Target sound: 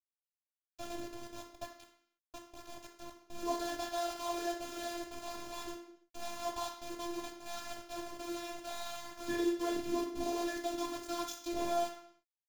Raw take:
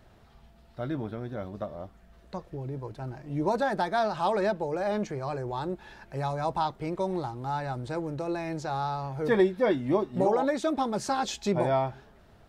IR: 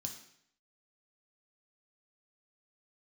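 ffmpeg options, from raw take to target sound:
-filter_complex "[0:a]aeval=exprs='val(0)*gte(abs(val(0)),0.0316)':c=same[a];[1:a]atrim=start_sample=2205,afade=t=out:st=0.4:d=0.01,atrim=end_sample=18081[b];[a][b]afir=irnorm=-1:irlink=0,adynamicequalizer=threshold=0.0112:dfrequency=610:dqfactor=1.5:tfrequency=610:tqfactor=1.5:attack=5:release=100:ratio=0.375:range=2.5:mode=cutabove:tftype=bell,afftfilt=real='hypot(re,im)*cos(PI*b)':imag='0':win_size=512:overlap=0.75,volume=-2dB"

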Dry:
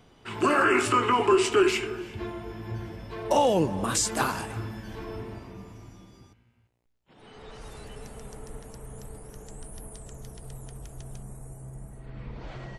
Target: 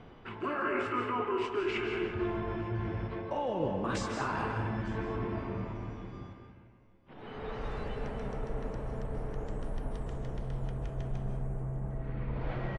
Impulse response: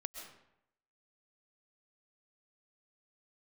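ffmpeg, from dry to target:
-filter_complex "[0:a]lowpass=2.3k,areverse,acompressor=threshold=-37dB:ratio=8,areverse,aecho=1:1:903:0.0708[a];[1:a]atrim=start_sample=2205,asetrate=36603,aresample=44100[b];[a][b]afir=irnorm=-1:irlink=0,volume=8dB"

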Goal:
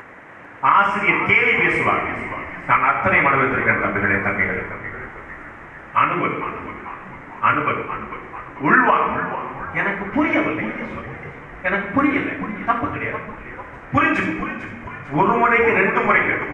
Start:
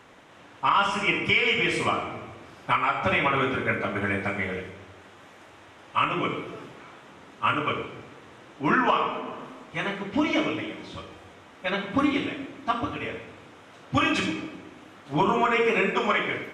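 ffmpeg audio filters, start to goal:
-filter_complex "[0:a]highshelf=f=2.7k:t=q:w=3:g=-11,acompressor=mode=upward:threshold=-40dB:ratio=2.5,asplit=6[a][b][c][d][e][f];[b]adelay=448,afreqshift=-83,volume=-12dB[g];[c]adelay=896,afreqshift=-166,volume=-18dB[h];[d]adelay=1344,afreqshift=-249,volume=-24dB[i];[e]adelay=1792,afreqshift=-332,volume=-30.1dB[j];[f]adelay=2240,afreqshift=-415,volume=-36.1dB[k];[a][g][h][i][j][k]amix=inputs=6:normalize=0,volume=5dB"

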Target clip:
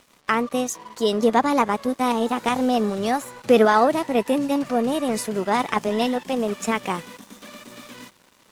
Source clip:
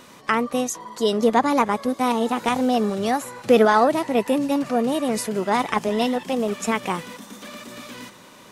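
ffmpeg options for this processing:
-af "aeval=exprs='sgn(val(0))*max(abs(val(0))-0.00562,0)':c=same"

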